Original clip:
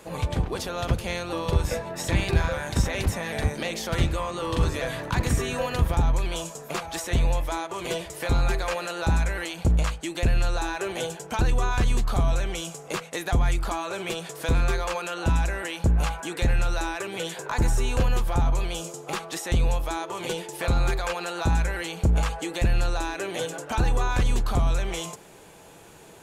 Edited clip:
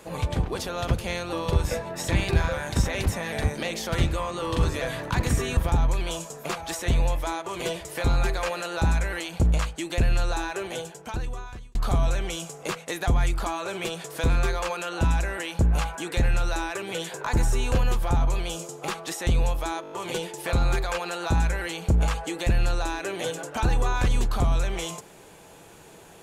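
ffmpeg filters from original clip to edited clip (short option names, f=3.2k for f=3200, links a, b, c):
-filter_complex "[0:a]asplit=8[a][b][c][d][e][f][g][h];[a]atrim=end=5.572[i];[b]atrim=start=5.818:end=12,asetpts=PTS-STARTPTS,afade=t=out:st=4.772:d=1.41[j];[c]atrim=start=12:end=20.092,asetpts=PTS-STARTPTS,afade=t=in:d=0.004:c=hsin[k];[d]atrim=start=20.068:end=20.092[l];[e]atrim=start=20.068:end=20.092[m];[f]atrim=start=20.068:end=20.092[n];[g]atrim=start=20.068:end=20.092[o];[h]atrim=start=20.068[p];[j][k]concat=n=2:v=0:a=1[q];[i][q]acrossfade=d=0.004:c1=hsin:c2=hsin[r];[r][l]acrossfade=d=0.004:c1=hsin:c2=hsin[s];[s][m]acrossfade=d=0.004:c1=hsin:c2=hsin[t];[t][n]acrossfade=d=0.004:c1=hsin:c2=hsin[u];[u][o]acrossfade=d=0.004:c1=hsin:c2=hsin[v];[v][p]acrossfade=d=0.004:c1=hsin:c2=hsin"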